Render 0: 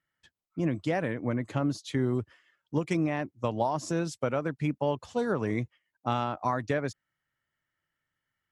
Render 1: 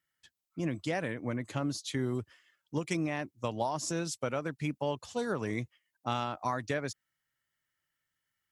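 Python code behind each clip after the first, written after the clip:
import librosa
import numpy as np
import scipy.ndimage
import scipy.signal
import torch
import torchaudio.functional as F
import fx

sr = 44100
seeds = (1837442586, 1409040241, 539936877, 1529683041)

y = fx.high_shelf(x, sr, hz=2800.0, db=11.0)
y = F.gain(torch.from_numpy(y), -5.0).numpy()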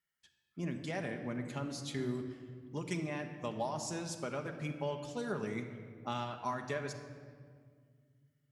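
y = fx.room_shoebox(x, sr, seeds[0], volume_m3=3200.0, walls='mixed', distance_m=1.3)
y = F.gain(torch.from_numpy(y), -6.0).numpy()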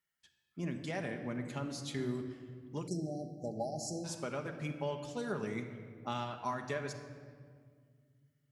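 y = fx.spec_erase(x, sr, start_s=2.87, length_s=1.18, low_hz=830.0, high_hz=4000.0)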